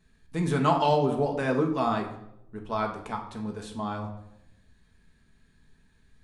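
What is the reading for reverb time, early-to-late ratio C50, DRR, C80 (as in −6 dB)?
0.80 s, 8.5 dB, 1.0 dB, 11.5 dB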